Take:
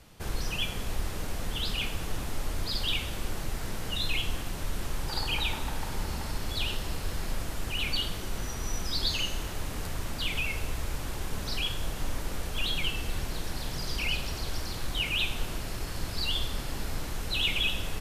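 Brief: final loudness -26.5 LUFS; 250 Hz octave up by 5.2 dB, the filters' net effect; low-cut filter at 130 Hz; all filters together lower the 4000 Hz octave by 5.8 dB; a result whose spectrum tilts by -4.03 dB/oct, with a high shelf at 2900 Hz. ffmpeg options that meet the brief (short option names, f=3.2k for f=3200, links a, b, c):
-af "highpass=130,equalizer=f=250:t=o:g=7.5,highshelf=f=2.9k:g=-4.5,equalizer=f=4k:t=o:g=-4.5,volume=9.5dB"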